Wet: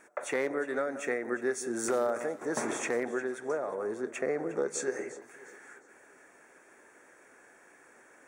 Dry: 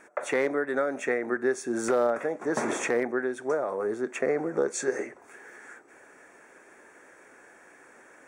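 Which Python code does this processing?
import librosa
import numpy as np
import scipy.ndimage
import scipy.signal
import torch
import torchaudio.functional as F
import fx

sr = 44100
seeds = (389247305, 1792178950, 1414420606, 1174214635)

y = fx.high_shelf(x, sr, hz=6700.0, db=fx.steps((0.0, 7.0), (1.03, 12.0), (2.65, 5.0)))
y = fx.echo_alternate(y, sr, ms=178, hz=1700.0, feedback_pct=59, wet_db=-12.5)
y = y * 10.0 ** (-5.0 / 20.0)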